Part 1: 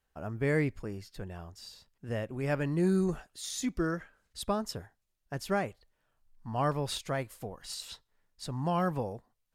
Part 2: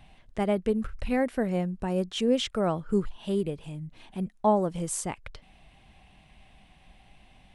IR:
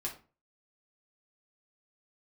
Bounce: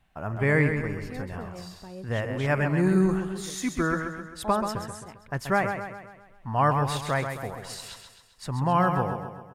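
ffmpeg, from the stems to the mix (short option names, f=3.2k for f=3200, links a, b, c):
-filter_complex "[0:a]equalizer=f=125:t=o:w=1:g=5,equalizer=f=1k:t=o:w=1:g=7,equalizer=f=2k:t=o:w=1:g=7,equalizer=f=4k:t=o:w=1:g=-4,volume=2dB,asplit=2[a][b];[b]volume=-7dB[c];[1:a]volume=-13.5dB[d];[c]aecho=0:1:132|264|396|528|660|792|924:1|0.5|0.25|0.125|0.0625|0.0312|0.0156[e];[a][d][e]amix=inputs=3:normalize=0"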